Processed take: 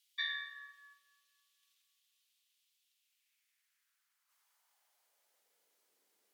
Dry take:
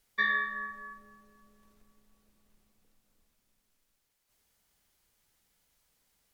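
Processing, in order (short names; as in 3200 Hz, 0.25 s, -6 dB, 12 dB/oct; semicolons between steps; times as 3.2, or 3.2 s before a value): high-pass sweep 3200 Hz -> 370 Hz, 2.89–5.89; gain -4 dB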